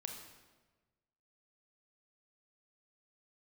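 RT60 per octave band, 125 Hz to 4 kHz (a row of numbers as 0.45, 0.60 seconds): 1.6, 1.4, 1.4, 1.2, 1.1, 0.95 seconds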